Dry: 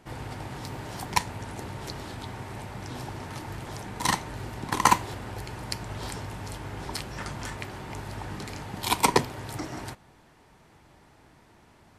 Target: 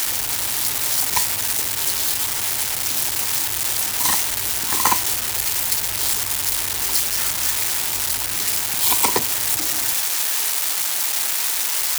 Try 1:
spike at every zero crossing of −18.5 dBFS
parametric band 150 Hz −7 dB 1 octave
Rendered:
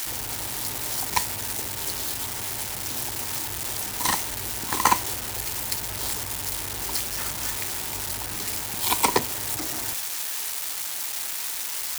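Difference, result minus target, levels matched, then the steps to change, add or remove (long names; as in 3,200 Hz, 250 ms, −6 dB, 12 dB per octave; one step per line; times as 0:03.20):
spike at every zero crossing: distortion −8 dB
change: spike at every zero crossing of −9.5 dBFS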